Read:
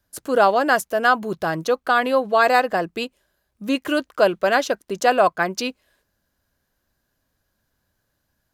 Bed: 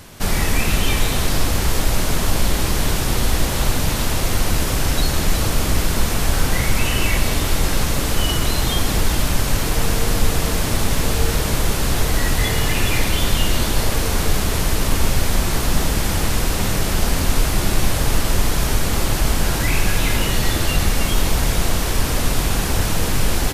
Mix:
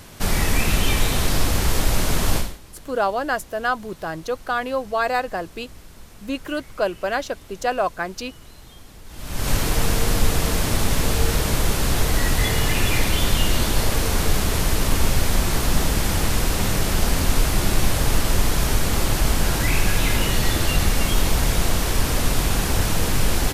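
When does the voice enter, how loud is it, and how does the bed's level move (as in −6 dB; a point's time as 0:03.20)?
2.60 s, −5.5 dB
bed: 0:02.37 −1.5 dB
0:02.60 −25.5 dB
0:09.04 −25.5 dB
0:09.49 −1.5 dB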